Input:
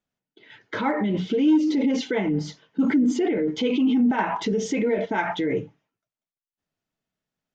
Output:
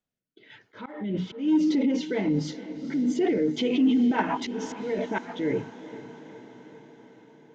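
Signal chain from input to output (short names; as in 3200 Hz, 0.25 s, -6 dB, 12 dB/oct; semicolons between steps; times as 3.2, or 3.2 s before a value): rotary speaker horn 1.1 Hz, later 7 Hz, at 2.64; auto swell 0.325 s; diffused feedback echo 0.462 s, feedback 64%, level -14.5 dB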